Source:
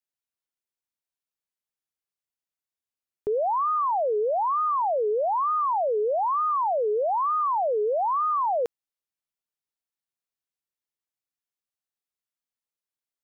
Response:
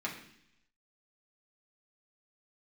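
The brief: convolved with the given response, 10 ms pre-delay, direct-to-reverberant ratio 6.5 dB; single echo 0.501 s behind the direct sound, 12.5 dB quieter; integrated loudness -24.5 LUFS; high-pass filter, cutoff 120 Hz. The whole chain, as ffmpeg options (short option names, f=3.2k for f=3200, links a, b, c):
-filter_complex "[0:a]highpass=120,aecho=1:1:501:0.237,asplit=2[a][b];[1:a]atrim=start_sample=2205,adelay=10[c];[b][c]afir=irnorm=-1:irlink=0,volume=-10.5dB[d];[a][d]amix=inputs=2:normalize=0,volume=-0.5dB"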